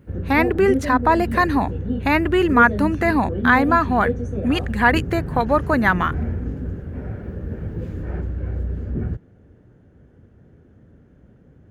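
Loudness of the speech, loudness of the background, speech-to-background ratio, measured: −19.5 LKFS, −27.0 LKFS, 7.5 dB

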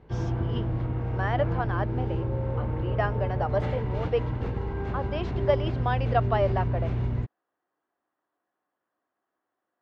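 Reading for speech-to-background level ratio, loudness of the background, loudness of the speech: −1.5 dB, −29.5 LKFS, −31.0 LKFS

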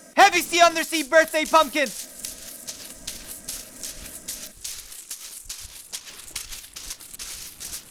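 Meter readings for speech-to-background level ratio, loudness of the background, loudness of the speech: 16.0 dB, −35.0 LKFS, −19.0 LKFS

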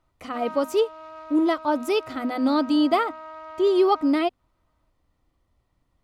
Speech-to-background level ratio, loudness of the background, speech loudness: 17.5 dB, −40.5 LKFS, −23.0 LKFS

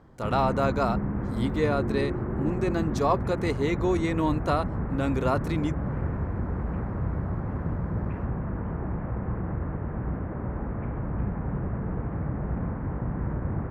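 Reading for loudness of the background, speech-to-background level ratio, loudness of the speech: −31.0 LKFS, 2.5 dB, −28.5 LKFS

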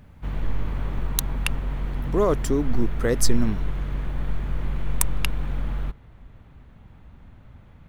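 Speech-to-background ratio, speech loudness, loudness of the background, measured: 4.0 dB, −27.0 LKFS, −31.0 LKFS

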